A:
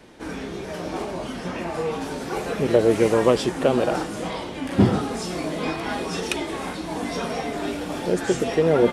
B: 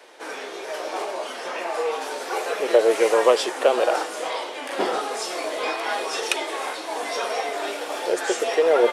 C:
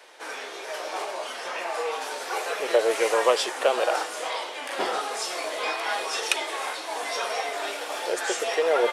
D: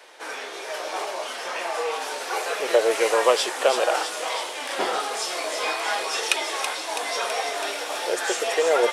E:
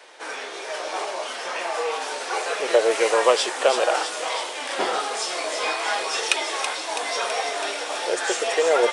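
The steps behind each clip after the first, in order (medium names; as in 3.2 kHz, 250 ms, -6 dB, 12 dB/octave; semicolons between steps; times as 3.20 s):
high-pass 450 Hz 24 dB/octave; trim +3.5 dB
peaking EQ 260 Hz -8 dB 2.3 oct
feedback echo behind a high-pass 328 ms, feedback 68%, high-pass 3.4 kHz, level -5 dB; trim +2 dB
resampled via 22.05 kHz; trim +1 dB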